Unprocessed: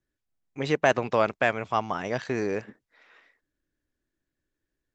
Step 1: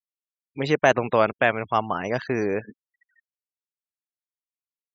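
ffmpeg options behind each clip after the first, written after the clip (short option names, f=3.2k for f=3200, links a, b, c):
-af "afftfilt=real='re*gte(hypot(re,im),0.01)':imag='im*gte(hypot(re,im),0.01)':win_size=1024:overlap=0.75,volume=3.5dB"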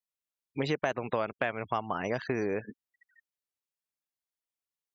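-af "acompressor=threshold=-27dB:ratio=6"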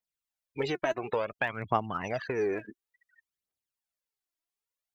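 -af "aphaser=in_gain=1:out_gain=1:delay=3.2:decay=0.63:speed=0.57:type=triangular,volume=-2dB"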